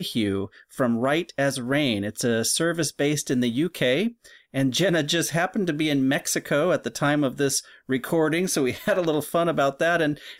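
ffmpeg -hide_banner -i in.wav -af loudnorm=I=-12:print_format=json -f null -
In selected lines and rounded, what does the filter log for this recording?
"input_i" : "-23.8",
"input_tp" : "-12.2",
"input_lra" : "0.6",
"input_thresh" : "-33.9",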